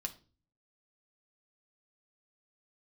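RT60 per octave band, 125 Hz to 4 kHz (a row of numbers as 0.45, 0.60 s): 0.75, 0.60, 0.40, 0.30, 0.30, 0.35 s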